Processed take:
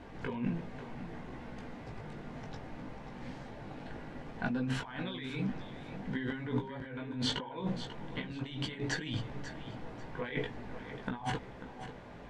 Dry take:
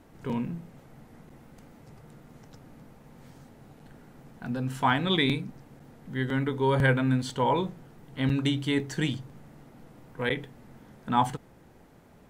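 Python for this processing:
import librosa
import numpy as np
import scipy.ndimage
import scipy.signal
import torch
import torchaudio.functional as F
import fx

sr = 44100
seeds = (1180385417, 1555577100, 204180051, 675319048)

p1 = scipy.signal.sosfilt(scipy.signal.butter(2, 3700.0, 'lowpass', fs=sr, output='sos'), x)
p2 = fx.low_shelf(p1, sr, hz=460.0, db=-6.0)
p3 = fx.notch(p2, sr, hz=1300.0, q=12.0)
p4 = fx.over_compress(p3, sr, threshold_db=-40.0, ratio=-1.0)
p5 = fx.chorus_voices(p4, sr, voices=6, hz=0.56, base_ms=18, depth_ms=2.5, mix_pct=40)
p6 = p5 + fx.echo_feedback(p5, sr, ms=541, feedback_pct=25, wet_db=-12, dry=0)
y = p6 * 10.0 ** (5.0 / 20.0)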